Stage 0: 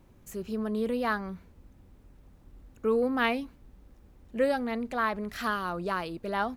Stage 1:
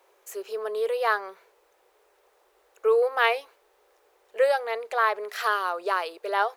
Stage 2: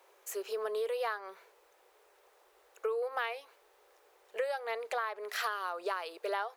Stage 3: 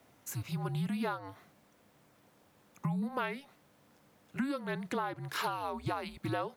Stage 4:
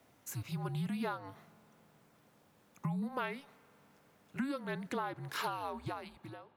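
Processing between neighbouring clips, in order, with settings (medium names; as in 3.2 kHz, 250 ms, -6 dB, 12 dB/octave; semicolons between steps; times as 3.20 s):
elliptic high-pass 410 Hz, stop band 40 dB; trim +6 dB
bass shelf 420 Hz -5 dB; compression 10:1, threshold -31 dBFS, peak gain reduction 15.5 dB
frequency shift -280 Hz
fade out at the end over 0.94 s; on a send at -23 dB: reverberation RT60 4.6 s, pre-delay 46 ms; on the sum: trim -2.5 dB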